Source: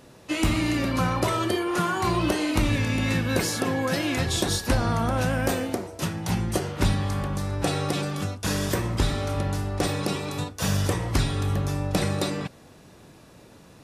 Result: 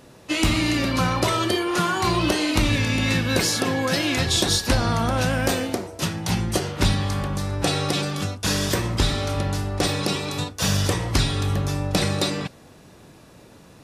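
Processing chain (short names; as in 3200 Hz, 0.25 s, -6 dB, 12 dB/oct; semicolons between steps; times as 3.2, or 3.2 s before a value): dynamic EQ 4300 Hz, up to +6 dB, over -44 dBFS, Q 0.75; gain +2 dB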